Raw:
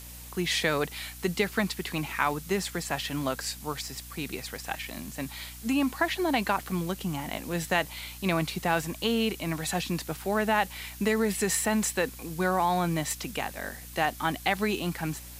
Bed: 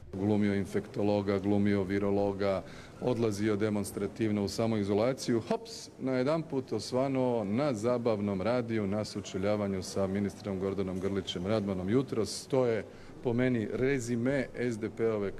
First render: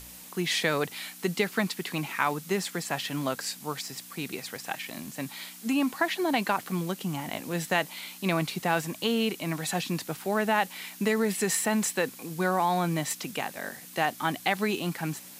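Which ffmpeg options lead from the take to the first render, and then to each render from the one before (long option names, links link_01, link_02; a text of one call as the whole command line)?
ffmpeg -i in.wav -af "bandreject=frequency=60:width_type=h:width=4,bandreject=frequency=120:width_type=h:width=4" out.wav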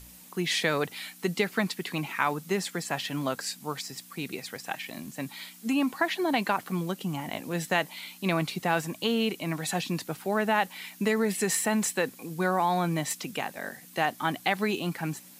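ffmpeg -i in.wav -af "afftdn=noise_reduction=6:noise_floor=-47" out.wav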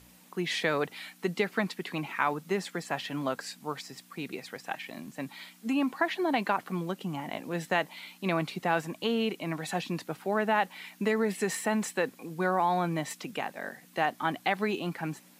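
ffmpeg -i in.wav -af "highpass=frequency=190:poles=1,highshelf=frequency=3900:gain=-10.5" out.wav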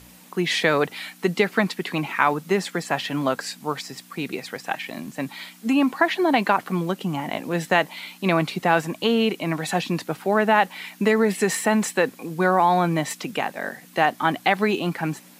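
ffmpeg -i in.wav -af "volume=8.5dB" out.wav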